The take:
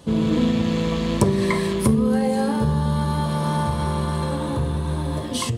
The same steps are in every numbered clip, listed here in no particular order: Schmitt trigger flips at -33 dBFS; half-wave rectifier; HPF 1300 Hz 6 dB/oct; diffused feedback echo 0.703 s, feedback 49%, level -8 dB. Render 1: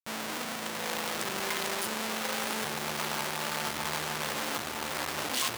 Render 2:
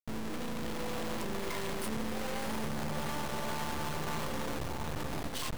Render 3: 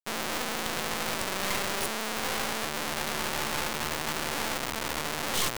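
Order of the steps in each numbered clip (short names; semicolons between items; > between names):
Schmitt trigger > diffused feedback echo > half-wave rectifier > HPF; HPF > Schmitt trigger > diffused feedback echo > half-wave rectifier; diffused feedback echo > Schmitt trigger > HPF > half-wave rectifier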